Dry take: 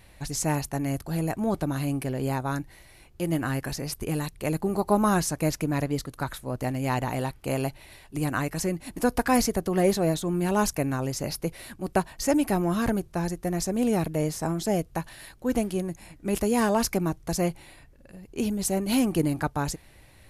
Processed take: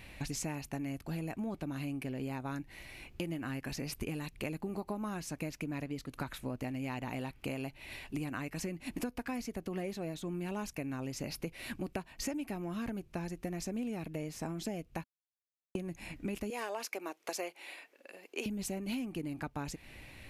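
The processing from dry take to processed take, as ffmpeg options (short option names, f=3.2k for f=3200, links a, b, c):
-filter_complex "[0:a]asettb=1/sr,asplit=3[a][b][c];[a]atrim=end=16.504[d];[b]atrim=start=16.5:end=18.46,asetpts=PTS-STARTPTS,afade=t=in:d=0.004:c=qsin,afade=t=out:st=1.956:d=0.004:c=qsin,highpass=f=400:w=0.5412,highpass=f=400:w=1.3066[e];[c]atrim=start=18.456[f];[d][e]acrossfade=d=0.004:c1=hsin:c2=qsin[g];[g][f]acrossfade=d=0.004:c1=qsin:c2=hsin,asplit=3[h][i][j];[h]atrim=end=15.04,asetpts=PTS-STARTPTS,afade=t=out:st=15.036:d=0.004:c=hsin[k];[i]atrim=start=15.04:end=15.75,asetpts=PTS-STARTPTS,volume=0[l];[j]atrim=start=15.75,asetpts=PTS-STARTPTS,afade=t=in:d=0.004:c=hsin[m];[k][l][m]concat=n=3:v=0:a=1,equalizer=f=250:t=o:w=0.67:g=6,equalizer=f=2.5k:t=o:w=0.67:g=9,equalizer=f=10k:t=o:w=0.67:g=-4,acompressor=threshold=-35dB:ratio=12"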